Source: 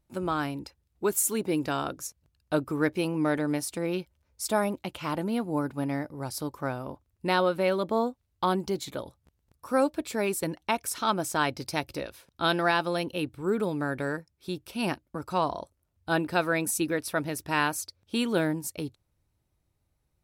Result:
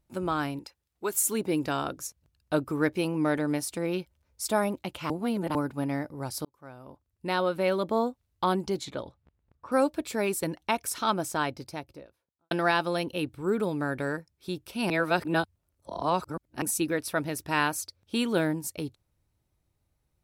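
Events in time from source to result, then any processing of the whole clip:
0:00.59–0:01.14: low-shelf EQ 340 Hz −12 dB
0:05.10–0:05.55: reverse
0:06.45–0:07.75: fade in
0:08.44–0:09.72: low-pass that shuts in the quiet parts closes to 2,100 Hz, open at −24.5 dBFS
0:11.02–0:12.51: fade out and dull
0:14.90–0:16.62: reverse

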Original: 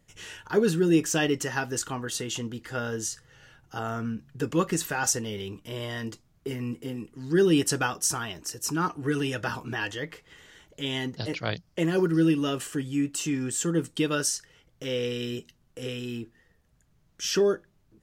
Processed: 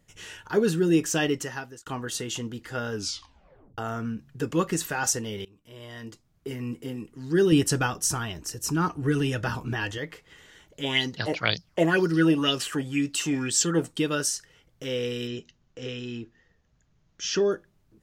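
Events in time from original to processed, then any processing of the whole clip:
0:01.30–0:01.86: fade out linear
0:02.92: tape stop 0.86 s
0:05.45–0:06.74: fade in, from −22.5 dB
0:07.52–0:09.98: low-shelf EQ 140 Hz +11.5 dB
0:10.83–0:13.92: auto-filter bell 2 Hz 650–5,500 Hz +17 dB
0:15.27–0:17.52: elliptic low-pass filter 6,800 Hz

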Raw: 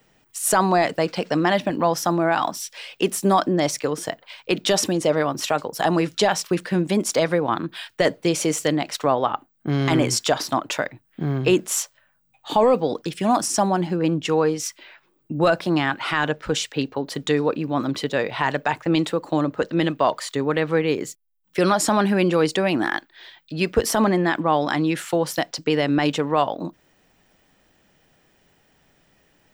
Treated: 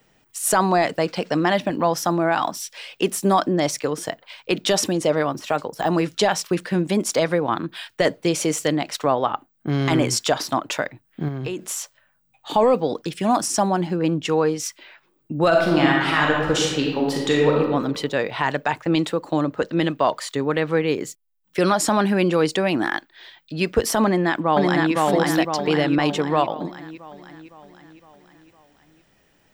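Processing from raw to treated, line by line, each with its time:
0:05.26–0:06.19: de-essing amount 80%
0:11.28–0:12.54: downward compressor 10 to 1, threshold −24 dBFS
0:15.47–0:17.60: thrown reverb, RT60 1.2 s, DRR −2 dB
0:24.05–0:24.93: delay throw 510 ms, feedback 55%, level −1 dB

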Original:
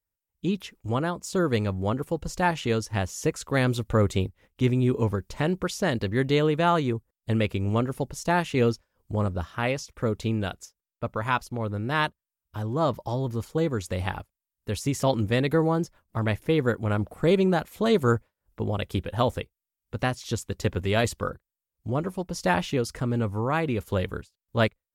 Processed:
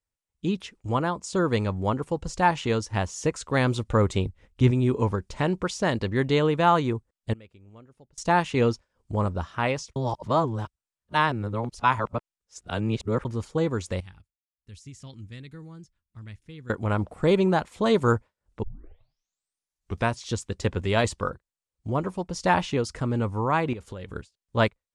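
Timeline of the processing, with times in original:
0:04.26–0:04.71: low-shelf EQ 110 Hz +12 dB
0:07.33–0:08.18: gate with flip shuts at −30 dBFS, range −25 dB
0:09.96–0:13.25: reverse
0:14.00–0:16.70: guitar amp tone stack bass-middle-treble 6-0-2
0:18.63: tape start 1.57 s
0:23.73–0:24.16: downward compressor 10 to 1, threshold −33 dBFS
whole clip: Butterworth low-pass 9,400 Hz 36 dB per octave; dynamic equaliser 970 Hz, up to +6 dB, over −43 dBFS, Q 2.7

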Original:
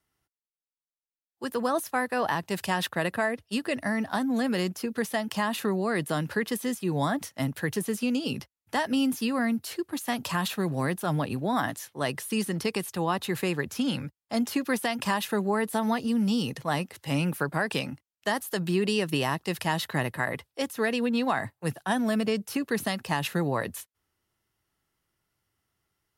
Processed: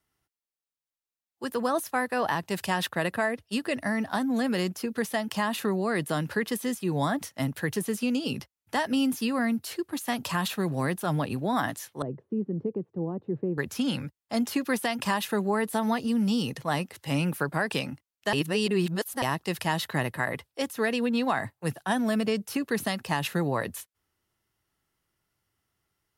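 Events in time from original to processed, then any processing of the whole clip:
0:12.02–0:13.58: Chebyshev band-pass filter 120–430 Hz
0:18.33–0:19.22: reverse

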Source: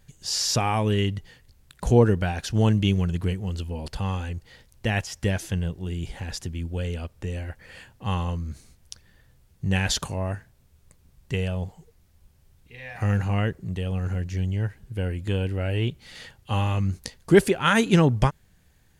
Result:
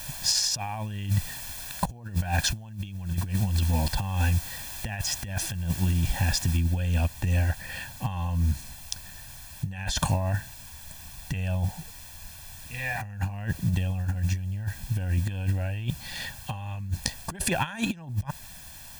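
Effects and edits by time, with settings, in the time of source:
0:06.57: noise floor change −46 dB −53 dB
whole clip: dynamic equaliser 270 Hz, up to −3 dB, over −30 dBFS, Q 1.1; comb filter 1.2 ms, depth 81%; compressor whose output falls as the input rises −26 dBFS, ratio −0.5

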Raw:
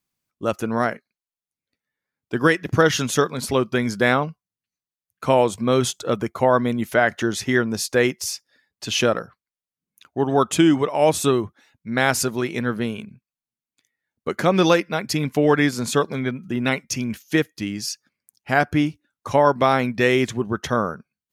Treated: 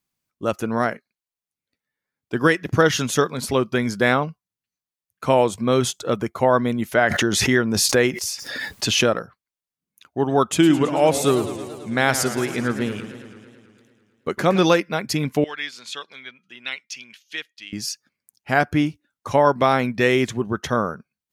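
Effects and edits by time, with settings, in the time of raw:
0:07.07–0:09.04: background raised ahead of every attack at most 26 dB per second
0:10.46–0:14.58: feedback echo with a swinging delay time 110 ms, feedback 71%, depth 179 cents, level −12 dB
0:15.44–0:17.73: resonant band-pass 3,200 Hz, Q 1.7

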